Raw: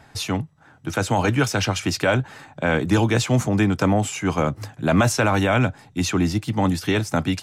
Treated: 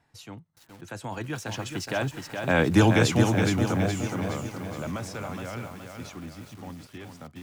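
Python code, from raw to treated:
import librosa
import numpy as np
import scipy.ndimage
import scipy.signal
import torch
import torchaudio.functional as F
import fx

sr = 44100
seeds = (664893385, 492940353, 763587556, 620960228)

y = fx.doppler_pass(x, sr, speed_mps=20, closest_m=6.4, pass_at_s=2.77)
y = fx.echo_crushed(y, sr, ms=419, feedback_pct=55, bits=8, wet_db=-5.0)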